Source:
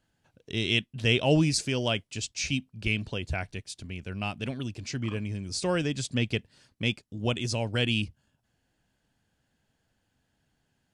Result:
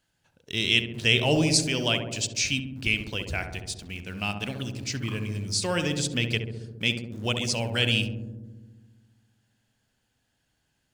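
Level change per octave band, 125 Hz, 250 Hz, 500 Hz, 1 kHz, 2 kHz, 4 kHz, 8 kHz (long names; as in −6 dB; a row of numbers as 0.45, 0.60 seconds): +0.5, +0.5, +0.5, +1.5, +4.5, +5.5, +6.5 decibels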